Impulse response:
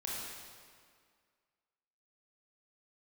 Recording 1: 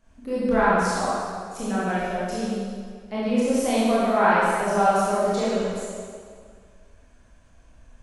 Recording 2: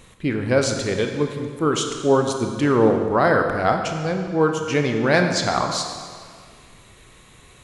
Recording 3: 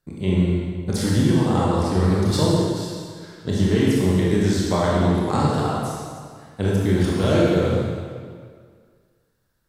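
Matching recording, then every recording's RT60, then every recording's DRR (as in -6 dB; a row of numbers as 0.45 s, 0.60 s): 3; 2.0 s, 2.0 s, 2.0 s; -10.0 dB, 4.0 dB, -5.5 dB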